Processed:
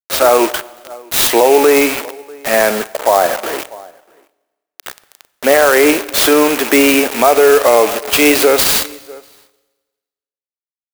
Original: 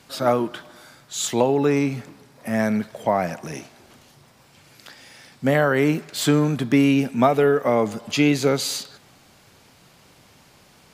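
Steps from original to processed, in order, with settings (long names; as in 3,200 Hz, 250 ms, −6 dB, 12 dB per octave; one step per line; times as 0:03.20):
loose part that buzzes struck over −30 dBFS, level −27 dBFS
0:02.70–0:03.59: Butterworth low-pass 1,800 Hz 36 dB per octave
bit reduction 6 bits
high-pass filter 380 Hz 24 dB per octave
slap from a distant wall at 110 metres, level −27 dB
four-comb reverb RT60 1.3 s, combs from 30 ms, DRR 19.5 dB
boost into a limiter +16 dB
converter with an unsteady clock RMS 0.045 ms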